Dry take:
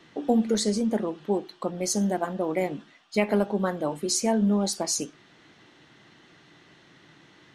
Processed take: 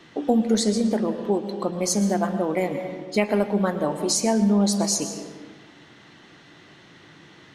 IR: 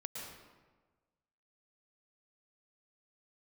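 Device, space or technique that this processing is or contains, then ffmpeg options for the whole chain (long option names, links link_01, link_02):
ducked reverb: -filter_complex "[0:a]asplit=3[link_01][link_02][link_03];[1:a]atrim=start_sample=2205[link_04];[link_02][link_04]afir=irnorm=-1:irlink=0[link_05];[link_03]apad=whole_len=332612[link_06];[link_05][link_06]sidechaincompress=threshold=-25dB:ratio=8:attack=16:release=777,volume=1.5dB[link_07];[link_01][link_07]amix=inputs=2:normalize=0"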